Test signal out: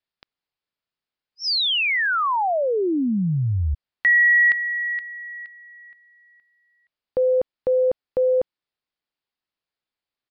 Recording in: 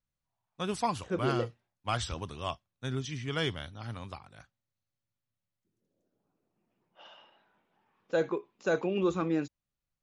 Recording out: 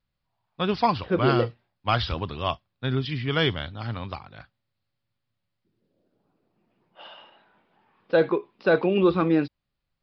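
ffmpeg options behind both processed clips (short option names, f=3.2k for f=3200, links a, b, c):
-af "aresample=11025,aresample=44100,volume=8.5dB"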